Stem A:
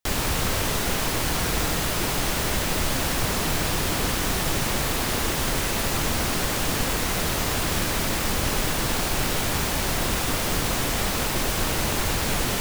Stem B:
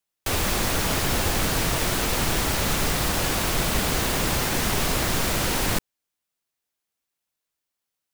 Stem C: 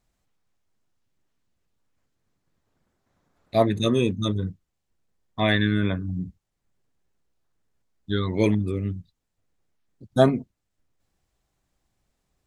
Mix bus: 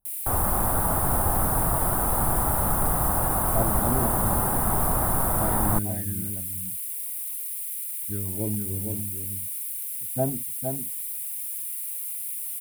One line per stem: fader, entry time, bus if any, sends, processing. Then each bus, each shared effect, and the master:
−1.0 dB, 0.00 s, no send, no echo send, Butterworth high-pass 2,200 Hz 72 dB per octave
+1.0 dB, 0.00 s, no send, no echo send, no processing
−5.0 dB, 0.00 s, no send, echo send −5.5 dB, phaser with its sweep stopped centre 2,800 Hz, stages 4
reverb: not used
echo: single-tap delay 461 ms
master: drawn EQ curve 110 Hz 0 dB, 470 Hz −6 dB, 780 Hz +4 dB, 1,300 Hz −1 dB, 2,500 Hz −24 dB, 6,300 Hz −26 dB, 9,600 Hz +2 dB

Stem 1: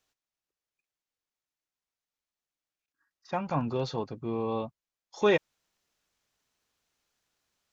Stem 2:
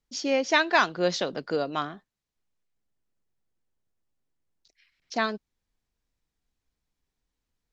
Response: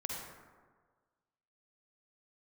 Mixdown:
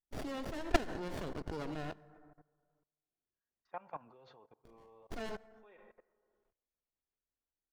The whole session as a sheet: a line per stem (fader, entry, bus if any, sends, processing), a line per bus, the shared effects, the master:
−10.0 dB, 0.40 s, send −17.5 dB, three-way crossover with the lows and the highs turned down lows −14 dB, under 430 Hz, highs −23 dB, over 2,800 Hz; automatic ducking −16 dB, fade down 0.25 s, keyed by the second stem
+1.0 dB, 0.00 s, send −12.5 dB, low-shelf EQ 350 Hz −8.5 dB; comb filter 2.8 ms, depth 37%; windowed peak hold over 33 samples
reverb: on, RT60 1.5 s, pre-delay 42 ms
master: output level in coarse steps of 20 dB

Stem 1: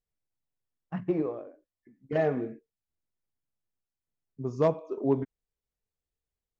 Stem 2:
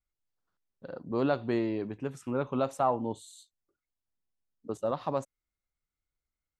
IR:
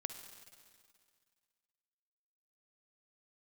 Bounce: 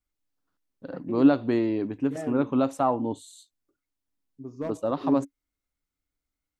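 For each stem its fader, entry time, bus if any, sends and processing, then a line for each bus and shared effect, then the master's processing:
−10.0 dB, 0.00 s, no send, hard clipping −17 dBFS, distortion −22 dB
+2.5 dB, 0.00 s, no send, no processing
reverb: not used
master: parametric band 280 Hz +12.5 dB 0.27 octaves

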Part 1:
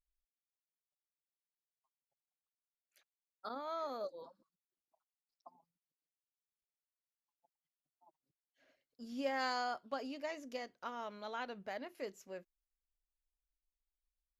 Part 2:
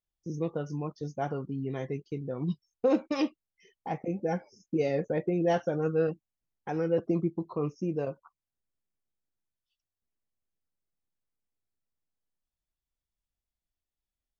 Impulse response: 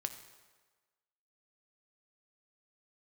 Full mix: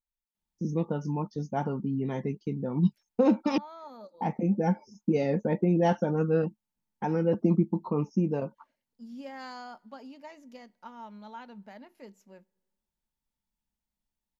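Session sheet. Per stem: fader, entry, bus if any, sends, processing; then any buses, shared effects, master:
−7.5 dB, 0.00 s, send −18 dB, no processing
0.0 dB, 0.35 s, muted 0:03.58–0:04.15, no send, no processing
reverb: on, RT60 1.4 s, pre-delay 4 ms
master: hollow resonant body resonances 210/890 Hz, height 15 dB, ringing for 70 ms

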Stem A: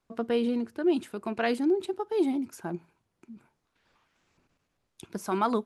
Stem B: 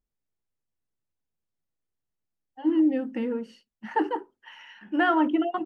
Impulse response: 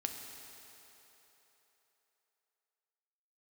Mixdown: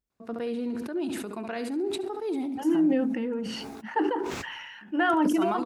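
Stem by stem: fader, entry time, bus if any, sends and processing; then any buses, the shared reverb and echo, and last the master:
−5.0 dB, 0.10 s, send −18.5 dB, echo send −11 dB, notch filter 3,100 Hz, Q 16; brickwall limiter −20 dBFS, peak gain reduction 5.5 dB
−2.0 dB, 0.00 s, no send, no echo send, no processing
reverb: on, RT60 3.7 s, pre-delay 4 ms
echo: repeating echo 70 ms, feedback 30%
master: high-pass filter 40 Hz; level that may fall only so fast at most 30 dB per second

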